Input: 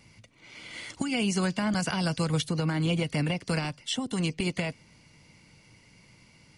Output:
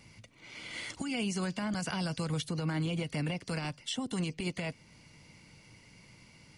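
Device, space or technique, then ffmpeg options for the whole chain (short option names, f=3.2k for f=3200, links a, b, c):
stacked limiters: -af "alimiter=limit=-20dB:level=0:latency=1:release=79,alimiter=level_in=1dB:limit=-24dB:level=0:latency=1:release=412,volume=-1dB"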